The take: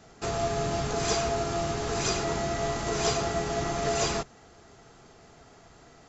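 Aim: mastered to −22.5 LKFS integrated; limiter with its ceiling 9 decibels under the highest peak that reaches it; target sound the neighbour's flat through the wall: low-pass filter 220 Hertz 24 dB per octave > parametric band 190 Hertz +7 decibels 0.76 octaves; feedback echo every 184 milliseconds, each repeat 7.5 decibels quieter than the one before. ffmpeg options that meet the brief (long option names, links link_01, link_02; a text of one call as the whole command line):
ffmpeg -i in.wav -af "alimiter=limit=-22.5dB:level=0:latency=1,lowpass=frequency=220:width=0.5412,lowpass=frequency=220:width=1.3066,equalizer=frequency=190:width_type=o:width=0.76:gain=7,aecho=1:1:184|368|552|736|920:0.422|0.177|0.0744|0.0312|0.0131,volume=14dB" out.wav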